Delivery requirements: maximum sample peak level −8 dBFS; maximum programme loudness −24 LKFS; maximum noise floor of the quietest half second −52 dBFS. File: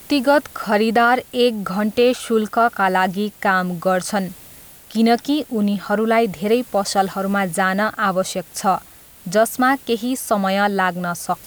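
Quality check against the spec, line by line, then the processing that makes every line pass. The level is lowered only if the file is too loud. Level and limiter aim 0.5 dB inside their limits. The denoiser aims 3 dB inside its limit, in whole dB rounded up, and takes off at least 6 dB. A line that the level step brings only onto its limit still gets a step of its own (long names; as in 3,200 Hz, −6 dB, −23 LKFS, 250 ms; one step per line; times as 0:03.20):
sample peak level −5.5 dBFS: out of spec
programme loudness −19.0 LKFS: out of spec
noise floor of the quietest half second −43 dBFS: out of spec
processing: broadband denoise 7 dB, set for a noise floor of −43 dBFS
level −5.5 dB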